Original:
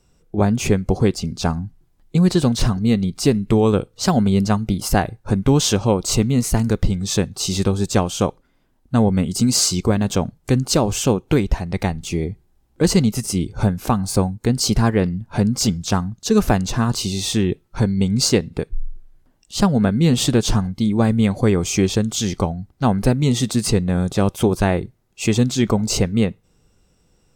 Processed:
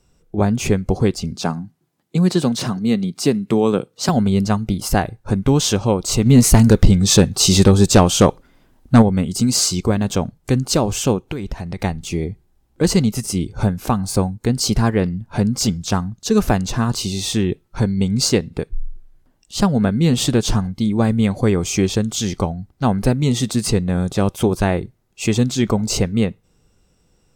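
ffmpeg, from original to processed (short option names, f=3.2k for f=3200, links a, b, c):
-filter_complex "[0:a]asettb=1/sr,asplit=3[a][b][c];[a]atrim=end=1.354[d];[b]atrim=start=1.35:end=4.09,asetpts=PTS-STARTPTS,afade=t=in:d=0.004:c=qsin,afade=t=out:st=2.736:d=0.004:c=qsin,highpass=f=140:w=0.5412,highpass=f=140:w=1.3066[e];[c]atrim=start=4.086[f];[d][e]acrossfade=d=0.004:c1=hsin:c2=qsin[g];[g][f]acrossfade=d=0.004:c1=qsin:c2=hsin,asplit=3[h][i][j];[h]afade=t=out:st=6.25:d=0.02[k];[i]aeval=exprs='0.794*sin(PI/2*1.78*val(0)/0.794)':c=same,afade=t=in:st=6.25:d=0.02,afade=t=out:st=9.01:d=0.02[l];[j]afade=t=in:st=9.01:d=0.02[m];[k][l][m]amix=inputs=3:normalize=0,asettb=1/sr,asplit=3[n][o][p];[n]atrim=end=11.284[q];[o]atrim=start=11.28:end=11.83,asetpts=PTS-STARTPTS,afade=t=in:d=0.004:c=qsin,afade=t=out:st=0.546:d=0.004:c=qsin,acompressor=threshold=-21dB:ratio=8:attack=3.2:release=140:knee=1:detection=peak[r];[p]atrim=start=11.826[s];[q][r]acrossfade=d=0.004:c1=hsin:c2=qsin[t];[t][s]acrossfade=d=0.004:c1=qsin:c2=hsin"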